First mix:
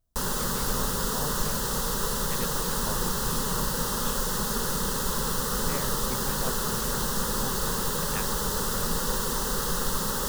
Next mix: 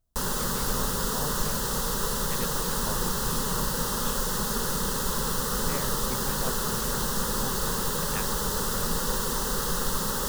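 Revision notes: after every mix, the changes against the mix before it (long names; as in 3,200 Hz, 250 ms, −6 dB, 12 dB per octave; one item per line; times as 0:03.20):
nothing changed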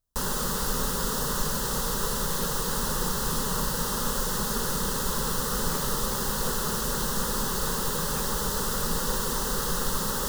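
speech −8.5 dB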